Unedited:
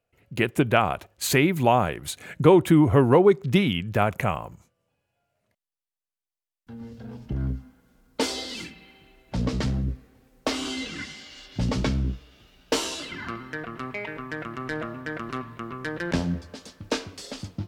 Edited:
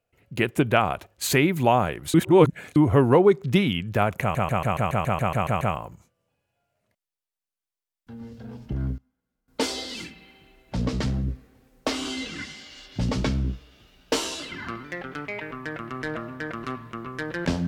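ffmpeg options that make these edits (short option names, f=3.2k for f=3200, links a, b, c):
-filter_complex "[0:a]asplit=17[a][b][c][d][e][f][g][h][i][j][k][l][m][n][o][p][q];[a]atrim=end=2.142[r];[b]atrim=start=2.138:end=2.762,asetpts=PTS-STARTPTS,areverse[s];[c]atrim=start=2.758:end=4.352[t];[d]atrim=start=4.208:end=4.352[u];[e]atrim=start=4.208:end=4.352[v];[f]atrim=start=4.208:end=4.352[w];[g]atrim=start=4.208:end=4.352[x];[h]atrim=start=4.208:end=4.352[y];[i]atrim=start=4.208:end=4.352[z];[j]atrim=start=4.208:end=4.352[aa];[k]atrim=start=4.208:end=4.352[ab];[l]atrim=start=4.208:end=4.352[ac];[m]atrim=start=4.208:end=7.58,asetpts=PTS-STARTPTS,afade=t=out:st=3.212:d=0.16:c=log:silence=0.0891251[ad];[n]atrim=start=7.58:end=8.08,asetpts=PTS-STARTPTS,volume=-21dB[ae];[o]atrim=start=8.08:end=13.444,asetpts=PTS-STARTPTS,afade=t=in:d=0.16:c=log:silence=0.0891251[af];[p]atrim=start=13.44:end=13.93,asetpts=PTS-STARTPTS,asetrate=50274,aresample=44100,atrim=end_sample=18955,asetpts=PTS-STARTPTS[ag];[q]atrim=start=13.926[ah];[r][s]acrossfade=d=0.004:c1=hsin:c2=hsin[ai];[ai][t]acrossfade=d=0.004:c1=hsin:c2=hsin[aj];[aj][u]acrossfade=d=0.004:c1=hsin:c2=hsin[ak];[ak][v]acrossfade=d=0.004:c1=hsin:c2=hsin[al];[al][w]acrossfade=d=0.004:c1=hsin:c2=hsin[am];[am][x]acrossfade=d=0.004:c1=hsin:c2=hsin[an];[an][y]acrossfade=d=0.004:c1=hsin:c2=hsin[ao];[ao][z]acrossfade=d=0.004:c1=hsin:c2=hsin[ap];[ap][aa]acrossfade=d=0.004:c1=hsin:c2=hsin[aq];[aq][ab]acrossfade=d=0.004:c1=hsin:c2=hsin[ar];[ar][ac]acrossfade=d=0.004:c1=hsin:c2=hsin[as];[ad][ae][af]concat=n=3:v=0:a=1[at];[as][at]acrossfade=d=0.004:c1=hsin:c2=hsin[au];[au][ag]acrossfade=d=0.004:c1=hsin:c2=hsin[av];[av][ah]acrossfade=d=0.004:c1=hsin:c2=hsin"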